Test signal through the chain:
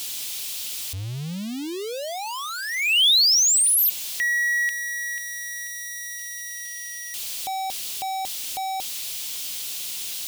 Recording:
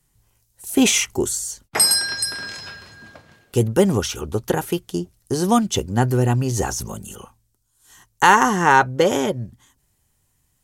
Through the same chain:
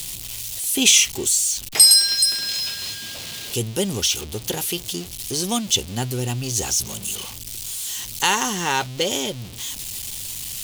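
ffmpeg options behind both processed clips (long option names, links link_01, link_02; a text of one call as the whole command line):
ffmpeg -i in.wav -af "aeval=exprs='val(0)+0.5*0.0473*sgn(val(0))':channel_layout=same,highshelf=frequency=2200:width_type=q:width=1.5:gain=11.5,volume=-8.5dB" out.wav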